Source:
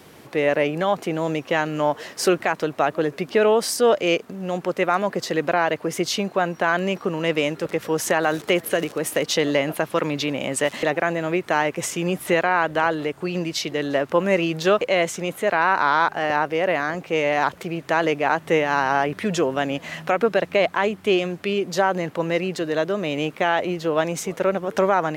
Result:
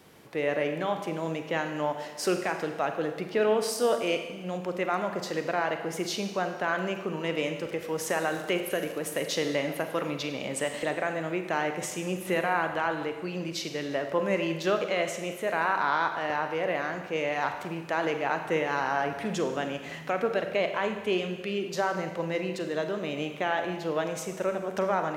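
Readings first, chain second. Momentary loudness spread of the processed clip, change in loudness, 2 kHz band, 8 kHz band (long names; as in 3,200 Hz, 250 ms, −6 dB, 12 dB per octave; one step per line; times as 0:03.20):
6 LU, −7.5 dB, −7.5 dB, −7.5 dB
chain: four-comb reverb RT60 1.2 s, combs from 33 ms, DRR 6 dB
level −8.5 dB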